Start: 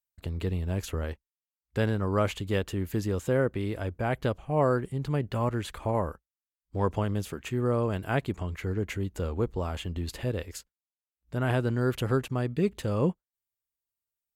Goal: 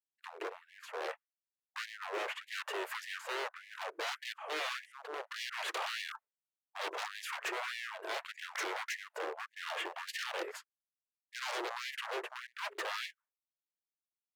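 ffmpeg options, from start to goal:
-filter_complex "[0:a]dynaudnorm=f=520:g=7:m=1.58,asuperstop=centerf=770:order=4:qfactor=6.1,acontrast=55,aeval=exprs='(tanh(14.1*val(0)+0.2)-tanh(0.2))/14.1':c=same,acrossover=split=240 2200:gain=0.178 1 0.112[s0][s1][s2];[s0][s1][s2]amix=inputs=3:normalize=0,tremolo=f=0.69:d=0.68,agate=range=0.0224:threshold=0.00398:ratio=3:detection=peak,alimiter=limit=0.0631:level=0:latency=1:release=332,aeval=exprs='0.0133*(abs(mod(val(0)/0.0133+3,4)-2)-1)':c=same,equalizer=f=300:w=4.8:g=9,asplit=2[s3][s4];[s4]asetrate=29433,aresample=44100,atempo=1.49831,volume=0.562[s5];[s3][s5]amix=inputs=2:normalize=0,afftfilt=real='re*gte(b*sr/1024,320*pow(1700/320,0.5+0.5*sin(2*PI*1.7*pts/sr)))':imag='im*gte(b*sr/1024,320*pow(1700/320,0.5+0.5*sin(2*PI*1.7*pts/sr)))':win_size=1024:overlap=0.75,volume=1.88"

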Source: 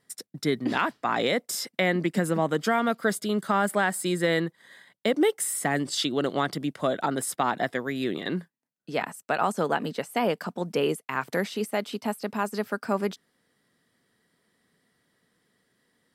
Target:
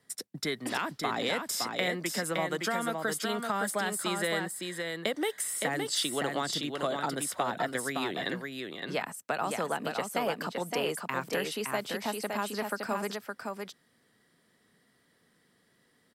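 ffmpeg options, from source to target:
-filter_complex "[0:a]acrossover=split=100|550|4700[s0][s1][s2][s3];[s0]acompressor=threshold=0.00112:ratio=4[s4];[s1]acompressor=threshold=0.01:ratio=4[s5];[s2]acompressor=threshold=0.0251:ratio=4[s6];[s3]acompressor=threshold=0.02:ratio=4[s7];[s4][s5][s6][s7]amix=inputs=4:normalize=0,aecho=1:1:565:0.596,volume=1.12"

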